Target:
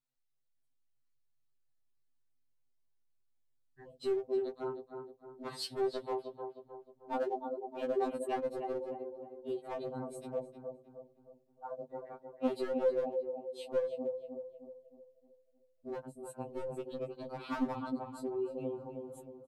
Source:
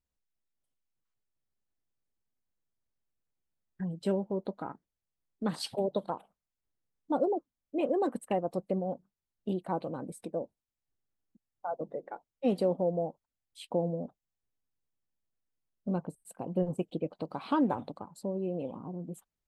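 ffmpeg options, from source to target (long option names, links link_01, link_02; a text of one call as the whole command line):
ffmpeg -i in.wav -filter_complex "[0:a]equalizer=frequency=4200:width=6:gain=5,asplit=2[link_01][link_02];[link_02]adelay=310,lowpass=frequency=1800:poles=1,volume=-6dB,asplit=2[link_03][link_04];[link_04]adelay=310,lowpass=frequency=1800:poles=1,volume=0.46,asplit=2[link_05][link_06];[link_06]adelay=310,lowpass=frequency=1800:poles=1,volume=0.46,asplit=2[link_07][link_08];[link_08]adelay=310,lowpass=frequency=1800:poles=1,volume=0.46,asplit=2[link_09][link_10];[link_10]adelay=310,lowpass=frequency=1800:poles=1,volume=0.46,asplit=2[link_11][link_12];[link_12]adelay=310,lowpass=frequency=1800:poles=1,volume=0.46[link_13];[link_01][link_03][link_05][link_07][link_09][link_11][link_13]amix=inputs=7:normalize=0,asoftclip=type=hard:threshold=-24dB,afftfilt=real='re*2.45*eq(mod(b,6),0)':imag='im*2.45*eq(mod(b,6),0)':win_size=2048:overlap=0.75,volume=-2dB" out.wav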